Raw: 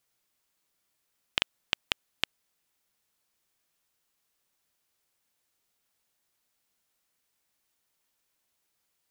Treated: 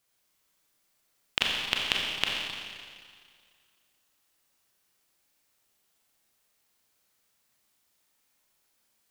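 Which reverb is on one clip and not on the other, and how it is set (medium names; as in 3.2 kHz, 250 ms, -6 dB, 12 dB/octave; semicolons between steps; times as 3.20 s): Schroeder reverb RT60 2 s, combs from 29 ms, DRR -2 dB; trim +1 dB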